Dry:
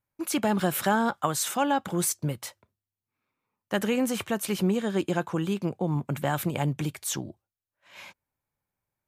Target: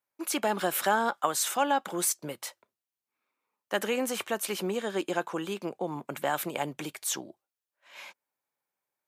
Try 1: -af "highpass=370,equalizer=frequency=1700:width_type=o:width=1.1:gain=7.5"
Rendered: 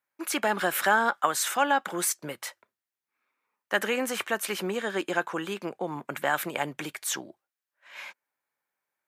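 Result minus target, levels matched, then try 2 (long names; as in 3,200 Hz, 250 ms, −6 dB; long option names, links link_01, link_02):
2,000 Hz band +4.5 dB
-af "highpass=370"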